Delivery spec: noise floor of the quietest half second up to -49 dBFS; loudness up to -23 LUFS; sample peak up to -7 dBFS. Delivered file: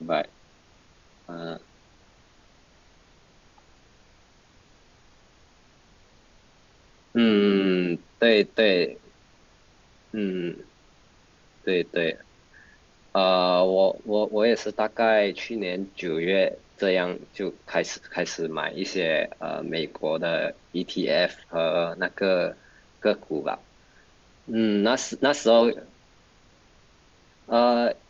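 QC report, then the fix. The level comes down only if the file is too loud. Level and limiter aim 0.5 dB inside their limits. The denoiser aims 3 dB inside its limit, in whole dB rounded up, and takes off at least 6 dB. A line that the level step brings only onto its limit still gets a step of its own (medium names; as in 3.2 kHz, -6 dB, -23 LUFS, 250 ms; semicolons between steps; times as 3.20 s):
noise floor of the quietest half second -57 dBFS: pass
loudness -24.5 LUFS: pass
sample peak -6.5 dBFS: fail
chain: peak limiter -7.5 dBFS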